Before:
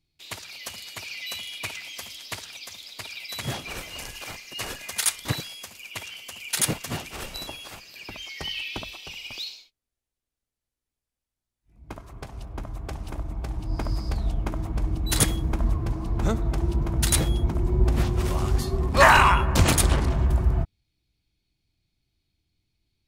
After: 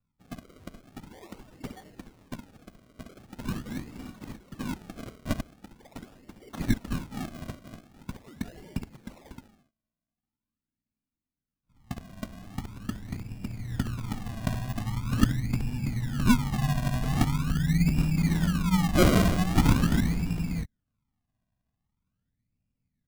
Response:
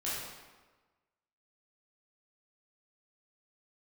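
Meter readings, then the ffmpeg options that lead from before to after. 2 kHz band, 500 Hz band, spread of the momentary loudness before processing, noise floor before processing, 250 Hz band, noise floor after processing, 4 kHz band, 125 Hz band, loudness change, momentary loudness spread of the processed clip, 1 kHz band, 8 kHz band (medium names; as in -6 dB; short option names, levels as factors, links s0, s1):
-10.0 dB, -5.5 dB, 17 LU, under -85 dBFS, +4.5 dB, under -85 dBFS, -9.5 dB, -1.5 dB, -3.0 dB, 22 LU, -10.5 dB, -13.0 dB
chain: -af "highpass=f=190:t=q:w=0.5412,highpass=f=190:t=q:w=1.307,lowpass=f=2300:t=q:w=0.5176,lowpass=f=2300:t=q:w=0.7071,lowpass=f=2300:t=q:w=1.932,afreqshift=-200,lowshelf=f=350:t=q:w=3:g=11.5,acrusher=samples=34:mix=1:aa=0.000001:lfo=1:lforange=34:lforate=0.43,volume=0.501"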